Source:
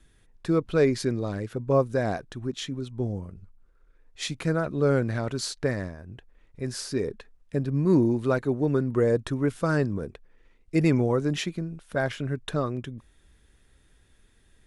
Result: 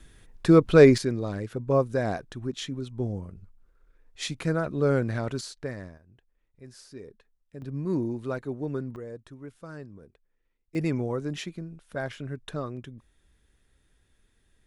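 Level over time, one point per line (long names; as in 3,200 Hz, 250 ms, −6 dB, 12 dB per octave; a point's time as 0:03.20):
+7 dB
from 0:00.98 −1 dB
from 0:05.41 −8 dB
from 0:05.98 −15.5 dB
from 0:07.62 −7.5 dB
from 0:08.96 −17.5 dB
from 0:10.75 −6 dB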